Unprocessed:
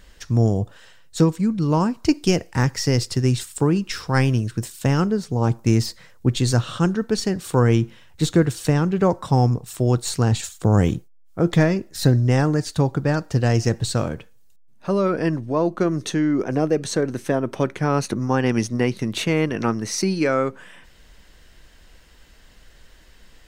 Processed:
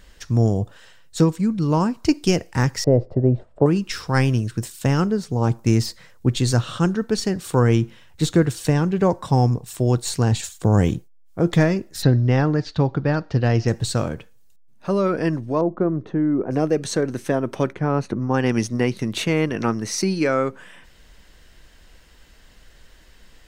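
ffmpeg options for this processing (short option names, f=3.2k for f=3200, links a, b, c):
-filter_complex "[0:a]asettb=1/sr,asplit=3[a][b][c];[a]atrim=end=2.844[d];[b]atrim=start=2.84:end=3.66,asetpts=PTS-STARTPTS,afade=t=in:d=0.004:c=qsin,afade=t=out:st=0.816:d=0.004:c=qsin,lowpass=f=620:t=q:w=6.4[e];[c]atrim=start=3.656[f];[d][e]acrossfade=d=0.004:c1=hsin:c2=qsin[g];[g][f]acrossfade=d=0.004:c1=qsin:c2=hsin,asettb=1/sr,asplit=3[h][i][j];[h]atrim=end=8.604[k];[i]atrim=start=8.6:end=11.49,asetpts=PTS-STARTPTS,afade=t=in:d=0.004:c=qsin,afade=t=out:st=2.886:d=0.004:c=qsin,bandreject=f=1.3k:w=12[l];[j]atrim=start=11.486[m];[k][l]acrossfade=d=0.004:c1=hsin:c2=qsin[n];[n][m]acrossfade=d=0.004:c1=qsin:c2=hsin,asplit=3[o][p][q];[o]afade=t=out:st=12.01:d=0.02[r];[p]lowpass=f=4.7k:w=0.5412,lowpass=f=4.7k:w=1.3066,afade=t=in:st=12.01:d=0.02,afade=t=out:st=13.67:d=0.02[s];[q]afade=t=in:st=13.67:d=0.02[t];[r][s][t]amix=inputs=3:normalize=0,asettb=1/sr,asplit=3[u][v][w];[u]atrim=end=15.614[x];[v]atrim=start=15.61:end=16.51,asetpts=PTS-STARTPTS,afade=t=in:d=0.004:c=qsin,afade=t=out:st=0.896:d=0.004:c=qsin,lowpass=1k[y];[w]atrim=start=16.506[z];[x][y]acrossfade=d=0.004:c1=hsin:c2=qsin[aa];[aa][z]acrossfade=d=0.004:c1=qsin:c2=hsin,asplit=3[ab][ac][ad];[ab]afade=t=out:st=17.72:d=0.02[ae];[ac]lowpass=f=1.3k:p=1,afade=t=in:st=17.72:d=0.02,afade=t=out:st=18.33:d=0.02[af];[ad]afade=t=in:st=18.33:d=0.02[ag];[ae][af][ag]amix=inputs=3:normalize=0"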